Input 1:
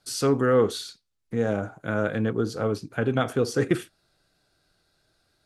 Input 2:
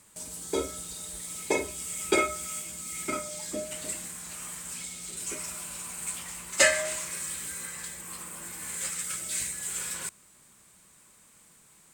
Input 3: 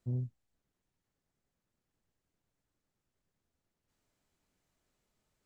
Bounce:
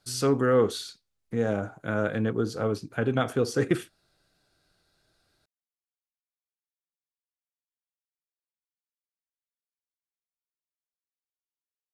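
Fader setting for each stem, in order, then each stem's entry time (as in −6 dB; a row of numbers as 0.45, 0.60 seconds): −1.5 dB, muted, −10.0 dB; 0.00 s, muted, 0.00 s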